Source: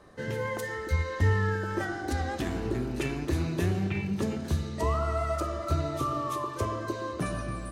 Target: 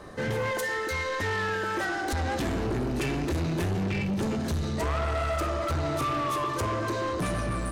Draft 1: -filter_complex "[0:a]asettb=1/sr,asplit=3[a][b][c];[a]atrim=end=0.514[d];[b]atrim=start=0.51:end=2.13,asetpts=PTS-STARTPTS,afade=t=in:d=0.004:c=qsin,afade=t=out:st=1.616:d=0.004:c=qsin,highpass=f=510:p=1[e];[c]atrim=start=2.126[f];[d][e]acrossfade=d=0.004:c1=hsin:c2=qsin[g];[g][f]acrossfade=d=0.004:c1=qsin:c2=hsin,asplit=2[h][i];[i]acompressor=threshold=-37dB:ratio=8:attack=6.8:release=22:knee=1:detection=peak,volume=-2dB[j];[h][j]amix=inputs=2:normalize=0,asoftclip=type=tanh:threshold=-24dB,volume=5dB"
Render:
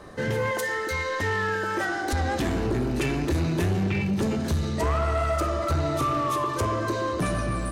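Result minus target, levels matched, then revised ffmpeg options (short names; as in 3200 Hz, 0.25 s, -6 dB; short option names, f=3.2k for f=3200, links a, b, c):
soft clip: distortion -5 dB
-filter_complex "[0:a]asettb=1/sr,asplit=3[a][b][c];[a]atrim=end=0.514[d];[b]atrim=start=0.51:end=2.13,asetpts=PTS-STARTPTS,afade=t=in:d=0.004:c=qsin,afade=t=out:st=1.616:d=0.004:c=qsin,highpass=f=510:p=1[e];[c]atrim=start=2.126[f];[d][e]acrossfade=d=0.004:c1=hsin:c2=qsin[g];[g][f]acrossfade=d=0.004:c1=qsin:c2=hsin,asplit=2[h][i];[i]acompressor=threshold=-37dB:ratio=8:attack=6.8:release=22:knee=1:detection=peak,volume=-2dB[j];[h][j]amix=inputs=2:normalize=0,asoftclip=type=tanh:threshold=-30dB,volume=5dB"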